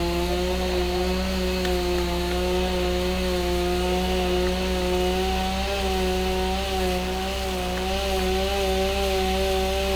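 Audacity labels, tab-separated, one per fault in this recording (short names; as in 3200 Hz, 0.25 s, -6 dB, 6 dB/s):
6.970000	7.880000	clipped -23.5 dBFS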